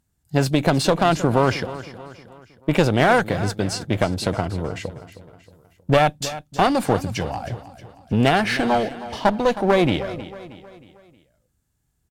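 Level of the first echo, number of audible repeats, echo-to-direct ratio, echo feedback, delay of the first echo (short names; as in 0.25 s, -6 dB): -15.0 dB, 3, -14.0 dB, 46%, 0.315 s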